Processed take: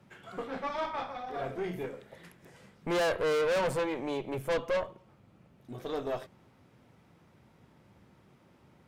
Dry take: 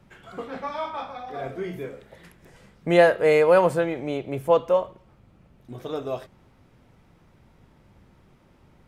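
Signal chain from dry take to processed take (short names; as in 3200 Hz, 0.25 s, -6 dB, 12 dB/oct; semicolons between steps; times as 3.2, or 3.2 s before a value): HPF 99 Hz 12 dB/oct; tube stage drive 26 dB, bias 0.6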